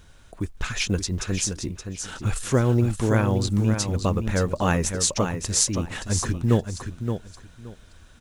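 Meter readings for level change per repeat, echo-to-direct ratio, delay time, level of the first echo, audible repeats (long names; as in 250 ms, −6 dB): −14.0 dB, −7.5 dB, 572 ms, −7.5 dB, 2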